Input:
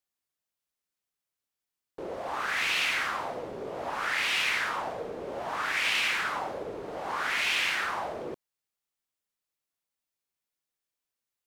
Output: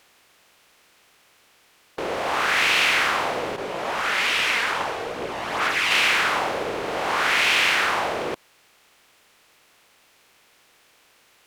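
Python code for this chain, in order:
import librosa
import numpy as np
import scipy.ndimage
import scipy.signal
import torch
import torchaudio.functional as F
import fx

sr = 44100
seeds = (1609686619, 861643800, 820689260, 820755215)

y = fx.bin_compress(x, sr, power=0.6)
y = fx.chorus_voices(y, sr, voices=2, hz=1.2, base_ms=19, depth_ms=3.0, mix_pct=65, at=(3.56, 5.91))
y = F.gain(torch.from_numpy(y), 5.5).numpy()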